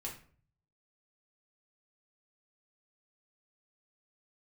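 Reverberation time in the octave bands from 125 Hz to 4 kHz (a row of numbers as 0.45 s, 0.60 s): 0.90 s, 0.55 s, 0.55 s, 0.45 s, 0.40 s, 0.30 s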